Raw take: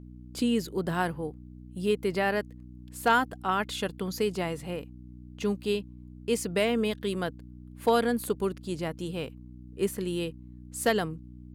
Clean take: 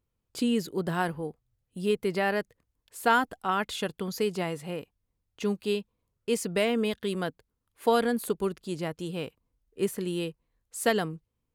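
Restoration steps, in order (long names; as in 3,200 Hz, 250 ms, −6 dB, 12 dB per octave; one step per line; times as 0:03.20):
clipped peaks rebuilt −13.5 dBFS
hum removal 61.3 Hz, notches 5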